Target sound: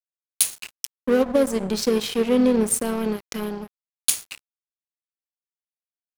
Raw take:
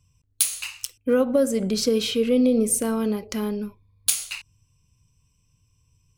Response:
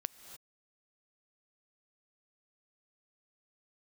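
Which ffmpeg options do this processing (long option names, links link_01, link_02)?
-filter_complex "[0:a]asplit=2[link_01][link_02];[link_02]asetrate=37084,aresample=44100,atempo=1.18921,volume=-16dB[link_03];[link_01][link_03]amix=inputs=2:normalize=0,aeval=exprs='sgn(val(0))*max(abs(val(0))-0.0299,0)':channel_layout=same,volume=2.5dB"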